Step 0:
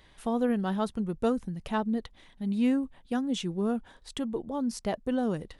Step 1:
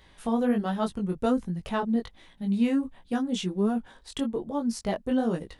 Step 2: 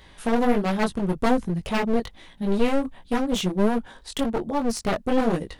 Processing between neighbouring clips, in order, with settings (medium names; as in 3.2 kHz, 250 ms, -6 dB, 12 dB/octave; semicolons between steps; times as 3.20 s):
chorus 1.3 Hz, delay 17 ms, depth 4.7 ms; trim +5 dB
one-sided wavefolder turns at -30 dBFS; trim +6.5 dB